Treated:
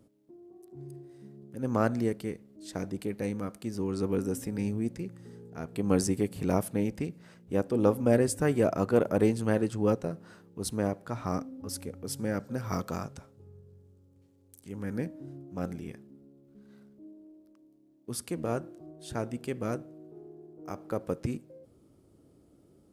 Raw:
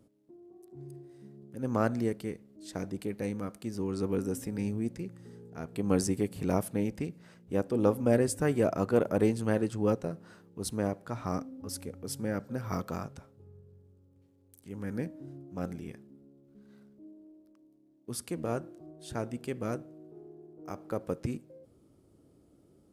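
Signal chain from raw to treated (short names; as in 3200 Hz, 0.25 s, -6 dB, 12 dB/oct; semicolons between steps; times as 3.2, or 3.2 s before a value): 12.18–14.72 bell 6900 Hz +4 dB 1.5 oct; gain +1.5 dB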